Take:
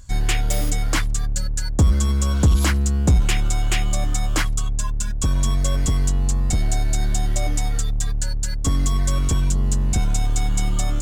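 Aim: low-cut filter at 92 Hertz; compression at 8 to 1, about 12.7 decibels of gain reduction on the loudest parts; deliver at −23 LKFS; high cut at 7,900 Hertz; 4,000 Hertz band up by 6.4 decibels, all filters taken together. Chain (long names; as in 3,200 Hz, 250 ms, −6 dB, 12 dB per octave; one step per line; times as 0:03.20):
high-pass filter 92 Hz
low-pass filter 7,900 Hz
parametric band 4,000 Hz +8.5 dB
downward compressor 8 to 1, threshold −26 dBFS
level +7 dB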